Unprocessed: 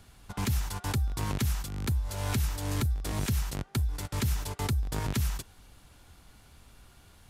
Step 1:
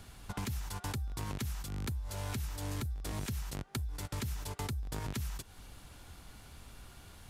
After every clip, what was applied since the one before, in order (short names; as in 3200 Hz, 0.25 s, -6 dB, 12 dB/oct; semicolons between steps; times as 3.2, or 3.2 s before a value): compressor 4:1, threshold -40 dBFS, peak gain reduction 13 dB; gain +3 dB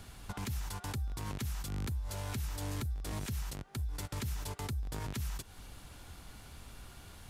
limiter -31 dBFS, peak gain reduction 7 dB; gain +1.5 dB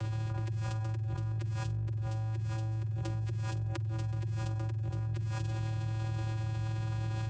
vocoder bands 8, square 110 Hz; on a send: flutter echo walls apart 8 m, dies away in 0.38 s; on the sum: fast leveller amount 100%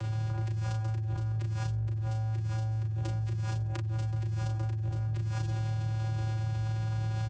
doubler 35 ms -5 dB